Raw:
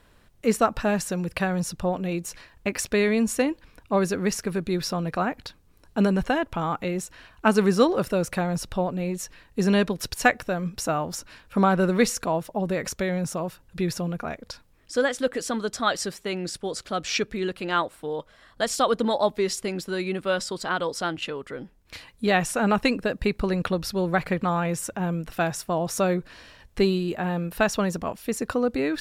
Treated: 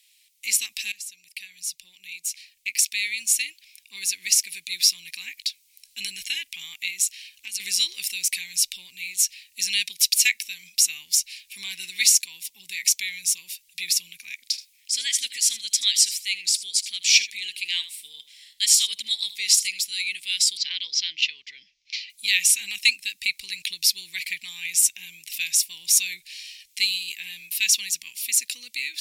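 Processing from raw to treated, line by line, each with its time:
0.92–4.68 fade in, from -19 dB
6.9–7.6 compressor 12:1, threshold -25 dBFS
14.49–19.82 echo 78 ms -15 dB
20.57–22.1 steep low-pass 6000 Hz 48 dB/oct
whole clip: elliptic high-pass 2200 Hz, stop band 40 dB; high shelf 3200 Hz +11 dB; AGC gain up to 6.5 dB

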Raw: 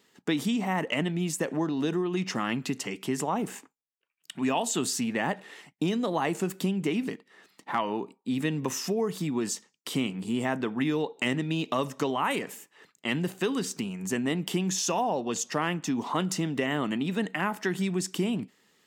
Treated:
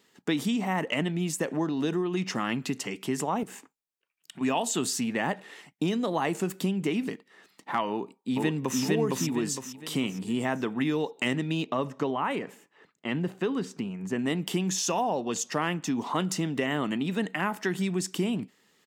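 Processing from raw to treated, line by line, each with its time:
3.43–4.41 compressor, threshold -39 dBFS
7.9–8.8 echo throw 0.46 s, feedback 40%, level -0.5 dB
11.64–14.19 LPF 1700 Hz 6 dB/oct

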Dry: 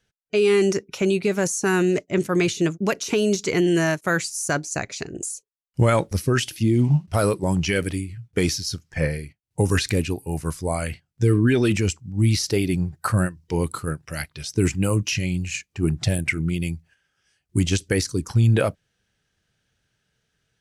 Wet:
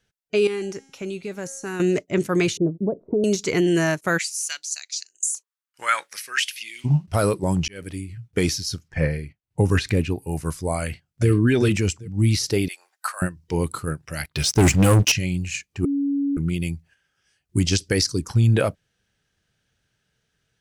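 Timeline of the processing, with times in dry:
0.47–1.8 resonator 270 Hz, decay 0.98 s, mix 70%
2.57–3.24 inverse Chebyshev low-pass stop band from 2800 Hz, stop band 70 dB
4.17–6.84 LFO high-pass saw up 0.79 Hz -> 0.21 Hz 1000–7200 Hz
7.68–8.18 fade in
8.88–10.22 tone controls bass +2 dB, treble -8 dB
10.82–11.29 echo throw 0.39 s, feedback 15%, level -4.5 dB
12.68–13.22 Bessel high-pass 1100 Hz, order 6
14.25–15.12 sample leveller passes 3
15.85–16.37 bleep 281 Hz -19.5 dBFS
17.65–18.19 bell 5000 Hz +9.5 dB 0.47 oct

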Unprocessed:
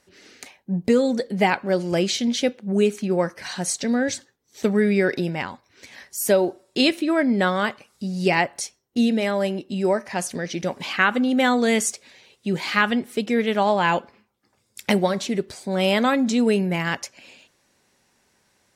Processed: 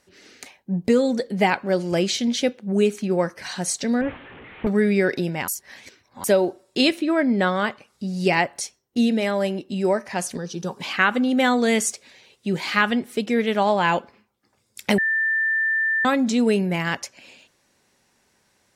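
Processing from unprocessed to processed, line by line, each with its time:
4.01–4.67 delta modulation 16 kbps, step -36.5 dBFS
5.48–6.24 reverse
6.98–8.08 high shelf 5500 Hz -6.5 dB
10.37–10.79 fixed phaser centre 420 Hz, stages 8
14.98–16.05 bleep 1780 Hz -18.5 dBFS

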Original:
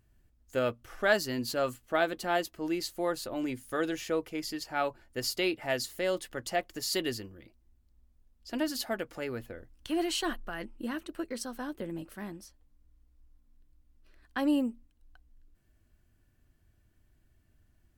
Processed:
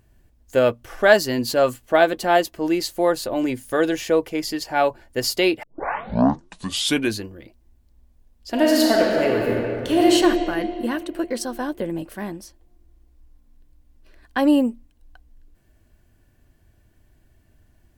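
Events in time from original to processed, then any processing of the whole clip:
5.63 tape start 1.65 s
8.5–10.12 reverb throw, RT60 2.8 s, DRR -3.5 dB
whole clip: bell 620 Hz +4 dB 1.7 oct; notch 1300 Hz, Q 9.7; gain +9 dB

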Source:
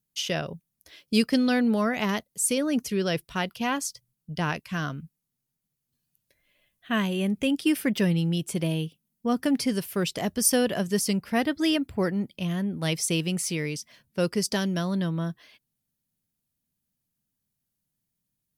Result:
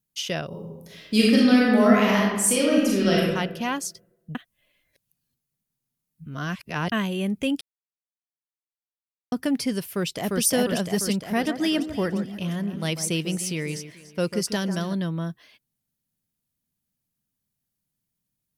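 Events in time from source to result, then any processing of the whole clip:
0.47–3.26 reverb throw, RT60 1.2 s, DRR -5.5 dB
4.35–6.92 reverse
7.61–9.32 mute
9.88–10.42 echo throw 0.35 s, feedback 65%, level -1 dB
11.16–14.94 echo with dull and thin repeats by turns 0.145 s, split 1700 Hz, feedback 52%, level -9.5 dB

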